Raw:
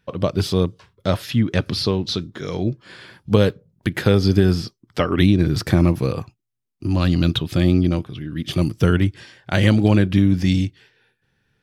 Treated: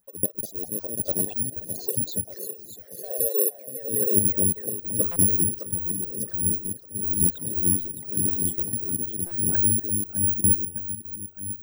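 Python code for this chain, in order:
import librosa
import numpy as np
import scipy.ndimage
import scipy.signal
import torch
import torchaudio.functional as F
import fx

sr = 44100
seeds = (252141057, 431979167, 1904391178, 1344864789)

y = fx.envelope_sharpen(x, sr, power=3.0)
y = fx.quant_dither(y, sr, seeds[0], bits=12, dither='triangular')
y = fx.level_steps(y, sr, step_db=17)
y = fx.cabinet(y, sr, low_hz=390.0, low_slope=24, high_hz=7400.0, hz=(430.0, 750.0, 1500.0, 3800.0, 5400.0), db=(9, 9, -7, 6, 4), at=(1.69, 4.11))
y = fx.echo_feedback(y, sr, ms=611, feedback_pct=41, wet_db=-5.5)
y = fx.echo_pitch(y, sr, ms=223, semitones=2, count=3, db_per_echo=-6.0)
y = (np.kron(y[::4], np.eye(4)[0]) * 4)[:len(y)]
y = y * (1.0 - 0.6 / 2.0 + 0.6 / 2.0 * np.cos(2.0 * np.pi * 0.95 * (np.arange(len(y)) / sr)))
y = fx.buffer_glitch(y, sr, at_s=(5.11, 9.26), block=256, repeats=8)
y = fx.stagger_phaser(y, sr, hz=4.0)
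y = y * librosa.db_to_amplitude(-6.0)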